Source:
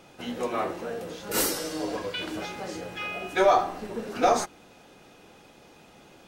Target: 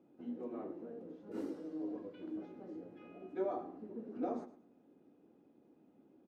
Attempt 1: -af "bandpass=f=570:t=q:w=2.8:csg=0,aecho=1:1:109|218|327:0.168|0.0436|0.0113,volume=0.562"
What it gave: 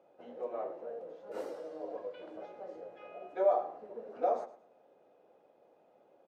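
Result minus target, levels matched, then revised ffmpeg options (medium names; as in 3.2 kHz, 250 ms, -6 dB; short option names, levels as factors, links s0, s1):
250 Hz band -15.0 dB
-af "bandpass=f=280:t=q:w=2.8:csg=0,aecho=1:1:109|218|327:0.168|0.0436|0.0113,volume=0.562"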